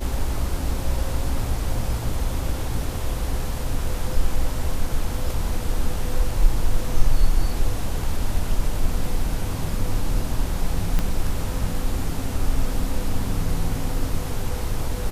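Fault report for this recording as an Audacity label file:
10.990000	10.990000	click −10 dBFS

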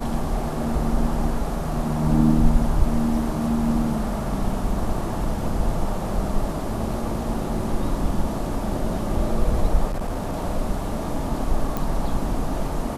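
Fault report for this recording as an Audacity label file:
9.860000	10.340000	clipping −22 dBFS
11.770000	11.770000	click

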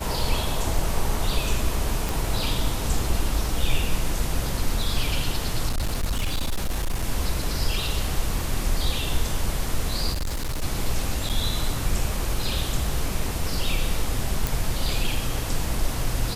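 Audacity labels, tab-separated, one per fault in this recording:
2.090000	2.090000	click
5.680000	7.040000	clipping −20.5 dBFS
10.120000	10.630000	clipping −23.5 dBFS
11.290000	11.300000	drop-out 7.4 ms
14.470000	14.470000	click

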